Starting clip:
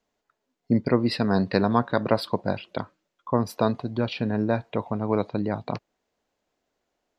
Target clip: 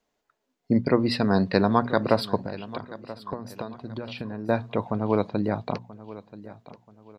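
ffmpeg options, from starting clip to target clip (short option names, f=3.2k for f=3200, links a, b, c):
-filter_complex "[0:a]bandreject=f=60:t=h:w=6,bandreject=f=120:t=h:w=6,bandreject=f=180:t=h:w=6,bandreject=f=240:t=h:w=6,asettb=1/sr,asplit=3[a][b][c];[a]atrim=end=2.424[d];[b]atrim=start=2.42:end=4.49,asetpts=PTS-STARTPTS,afade=t=in:d=0.004:c=qsin,afade=t=out:st=2.066:d=0.004:c=qsin,acompressor=threshold=-31dB:ratio=16[e];[c]atrim=start=4.486[f];[d][e]acrossfade=d=0.004:c1=hsin:c2=qsin[g];[g][f]acrossfade=d=0.004:c1=qsin:c2=hsin,aecho=1:1:982|1964|2946:0.141|0.048|0.0163,volume=1dB"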